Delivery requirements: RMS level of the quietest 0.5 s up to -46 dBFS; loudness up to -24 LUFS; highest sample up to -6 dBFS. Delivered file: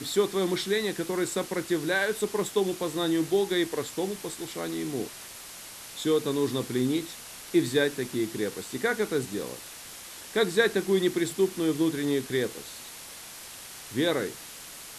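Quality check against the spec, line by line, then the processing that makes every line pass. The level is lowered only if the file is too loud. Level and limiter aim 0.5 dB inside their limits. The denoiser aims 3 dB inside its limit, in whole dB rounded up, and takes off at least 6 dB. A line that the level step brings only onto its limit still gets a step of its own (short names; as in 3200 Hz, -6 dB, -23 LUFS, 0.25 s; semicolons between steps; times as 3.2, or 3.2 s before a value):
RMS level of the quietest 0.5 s -44 dBFS: fail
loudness -28.0 LUFS: OK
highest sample -9.5 dBFS: OK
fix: denoiser 6 dB, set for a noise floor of -44 dBFS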